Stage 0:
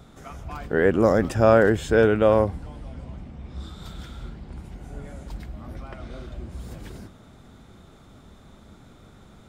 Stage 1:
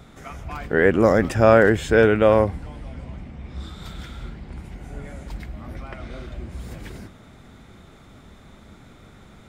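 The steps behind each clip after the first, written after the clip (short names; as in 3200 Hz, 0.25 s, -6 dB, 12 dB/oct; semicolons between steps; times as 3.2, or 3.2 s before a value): bell 2100 Hz +6 dB 0.71 oct; gain +2 dB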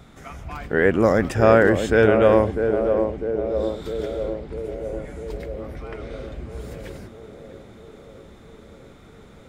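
narrowing echo 0.65 s, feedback 70%, band-pass 420 Hz, level -5 dB; gain -1 dB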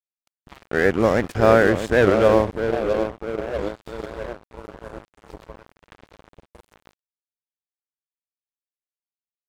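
crossover distortion -28 dBFS; record warp 78 rpm, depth 160 cents; gain +1 dB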